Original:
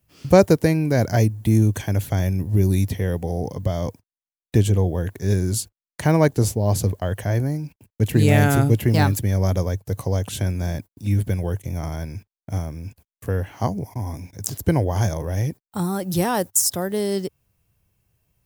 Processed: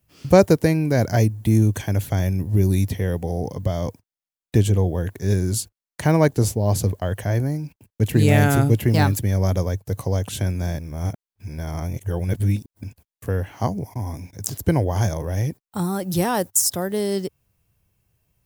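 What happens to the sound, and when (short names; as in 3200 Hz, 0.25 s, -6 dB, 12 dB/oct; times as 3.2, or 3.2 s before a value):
10.79–12.84 reverse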